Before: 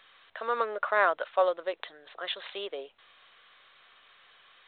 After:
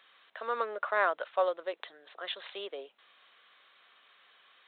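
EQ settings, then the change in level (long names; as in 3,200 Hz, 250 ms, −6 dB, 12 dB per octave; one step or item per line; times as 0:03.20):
high-pass filter 180 Hz 24 dB per octave
−3.5 dB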